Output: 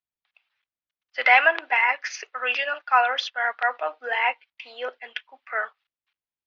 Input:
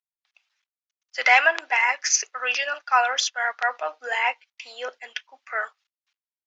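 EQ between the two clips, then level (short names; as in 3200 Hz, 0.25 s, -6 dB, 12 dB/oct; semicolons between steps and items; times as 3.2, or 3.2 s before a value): LPF 3700 Hz 24 dB/oct; low shelf 260 Hz +8 dB; 0.0 dB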